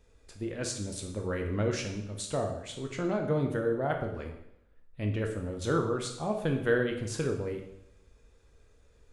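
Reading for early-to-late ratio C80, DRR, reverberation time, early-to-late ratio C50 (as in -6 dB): 9.5 dB, 2.5 dB, 0.75 s, 6.5 dB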